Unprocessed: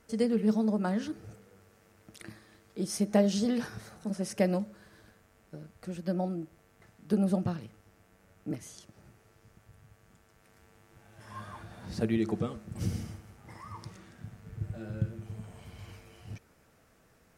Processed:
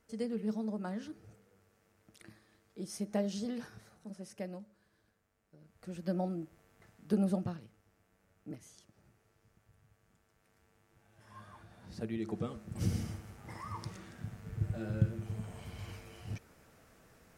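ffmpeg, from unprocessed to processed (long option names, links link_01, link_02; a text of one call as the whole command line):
ffmpeg -i in.wav -af "volume=15.5dB,afade=type=out:start_time=3.4:duration=1.18:silence=0.446684,afade=type=in:start_time=5.57:duration=0.48:silence=0.223872,afade=type=out:start_time=7.22:duration=0.43:silence=0.473151,afade=type=in:start_time=12.17:duration=1.05:silence=0.266073" out.wav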